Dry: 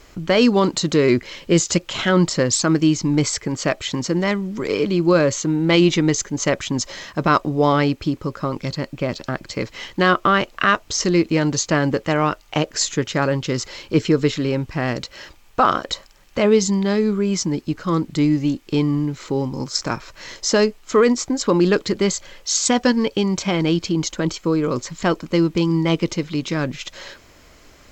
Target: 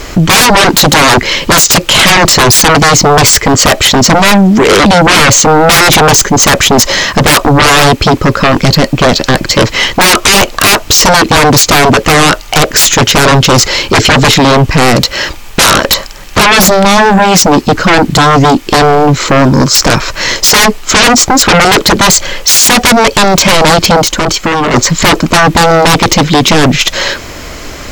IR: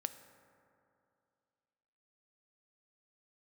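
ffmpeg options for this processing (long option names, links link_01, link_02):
-filter_complex "[0:a]aeval=exprs='0.596*sin(PI/2*7.94*val(0)/0.596)':channel_layout=same,asettb=1/sr,asplit=3[link_01][link_02][link_03];[link_01]atrim=end=24.014[link_04];[link_02]atrim=start=24.01:end=24.74,asetpts=PTS-STARTPTS,afade=type=in:duration=0.004:curve=qsin,afade=type=out:start_time=0.726:duration=0.004:curve=qsin,acompressor=threshold=-11dB:ratio=6[link_05];[link_03]atrim=start=24.736[link_06];[link_04][link_05]acrossfade=duration=0.004:curve1=hsin:curve2=qsin[link_07];[link_07][link_06]acrossfade=duration=0.004:curve1=qsin:curve2=hsin,volume=3dB"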